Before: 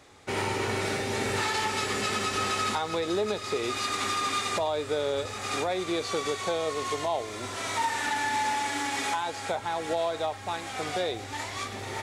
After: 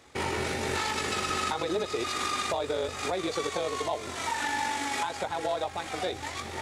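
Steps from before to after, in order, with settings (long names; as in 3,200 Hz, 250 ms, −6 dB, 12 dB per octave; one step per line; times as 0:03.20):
time stretch by overlap-add 0.55×, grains 41 ms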